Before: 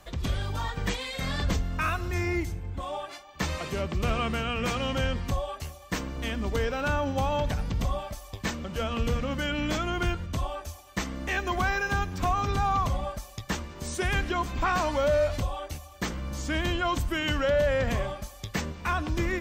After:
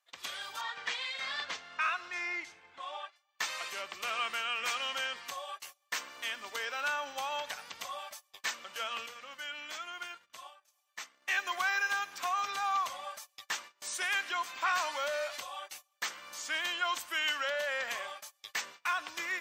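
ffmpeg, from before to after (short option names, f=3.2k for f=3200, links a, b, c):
-filter_complex "[0:a]asettb=1/sr,asplit=3[a][b][c];[a]atrim=end=0.614[d];[b]atrim=start=0.61:end=3.16,asetpts=PTS-STARTPTS,afade=t=in:d=0.004:c=qsin,afade=t=out:st=2.546:d=0.004:c=qsin,lowpass=4.7k[e];[c]atrim=start=3.156[f];[d][e]acrossfade=d=0.004:c1=hsin:c2=qsin[g];[g][f]acrossfade=d=0.004:c1=qsin:c2=hsin,asettb=1/sr,asplit=3[h][i][j];[h]atrim=end=9.064[k];[i]atrim=start=9.06:end=11.28,asetpts=PTS-STARTPTS,afade=t=in:d=0.004:c=qsin,afade=t=out:st=2.216:d=0.004:c=qsin,acompressor=threshold=-45dB:ratio=1.5:attack=3.2:release=140:knee=1:detection=peak[l];[j]atrim=start=11.276[m];[k][l]acrossfade=d=0.004:c1=hsin:c2=qsin[n];[n][m]acrossfade=d=0.004:c1=qsin:c2=hsin,agate=range=-23dB:threshold=-37dB:ratio=16:detection=peak,highpass=1.2k"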